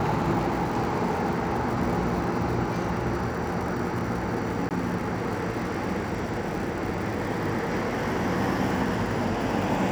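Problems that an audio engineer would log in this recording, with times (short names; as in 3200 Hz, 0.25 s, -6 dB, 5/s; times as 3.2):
crackle 150/s -34 dBFS
4.69–4.71 gap 18 ms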